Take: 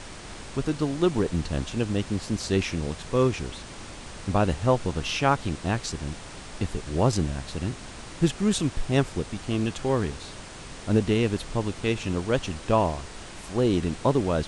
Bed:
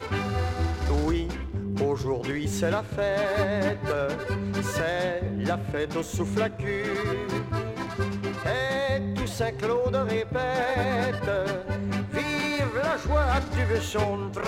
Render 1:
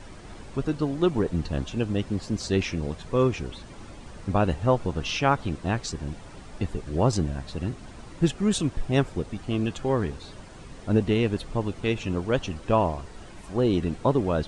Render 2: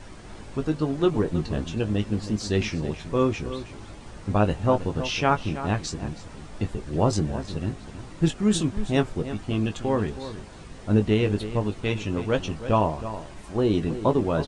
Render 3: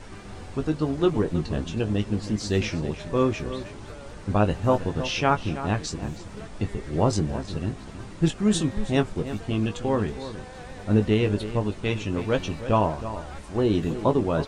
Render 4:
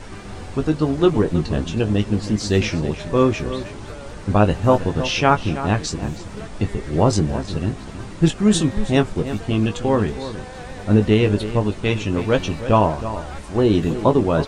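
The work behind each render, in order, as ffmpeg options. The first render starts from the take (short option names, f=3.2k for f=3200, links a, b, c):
-af "afftdn=nr=10:nf=-41"
-filter_complex "[0:a]asplit=2[a][b];[b]adelay=19,volume=-8dB[c];[a][c]amix=inputs=2:normalize=0,asplit=2[d][e];[e]adelay=320.7,volume=-12dB,highshelf=f=4k:g=-7.22[f];[d][f]amix=inputs=2:normalize=0"
-filter_complex "[1:a]volume=-18dB[a];[0:a][a]amix=inputs=2:normalize=0"
-af "volume=6dB,alimiter=limit=-3dB:level=0:latency=1"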